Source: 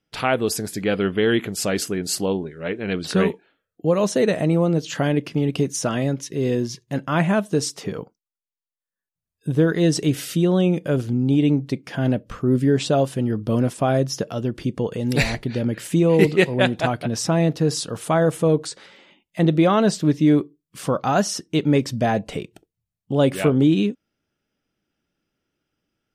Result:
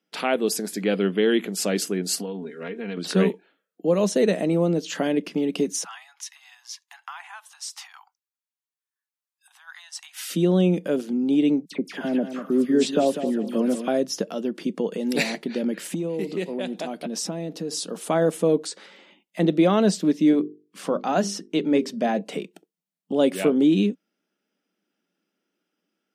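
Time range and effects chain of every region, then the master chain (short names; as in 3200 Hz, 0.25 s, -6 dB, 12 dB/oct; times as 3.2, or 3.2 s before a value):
2.15–2.97 comb 4.3 ms, depth 80% + compressor 12:1, threshold -27 dBFS
5.84–10.3 compressor, threshold -28 dBFS + steep high-pass 770 Hz 96 dB/oct
11.65–13.88 dispersion lows, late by 67 ms, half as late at 2100 Hz + feedback echo 0.196 s, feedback 25%, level -10 dB
15.94–18.07 bell 1500 Hz -6 dB 1.6 oct + compressor 5:1, threshold -23 dBFS
20.31–22.21 high shelf 6600 Hz -8 dB + notches 50/100/150/200/250/300/350/400/450 Hz
whole clip: elliptic high-pass 180 Hz, stop band 40 dB; dynamic EQ 1200 Hz, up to -5 dB, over -35 dBFS, Q 0.93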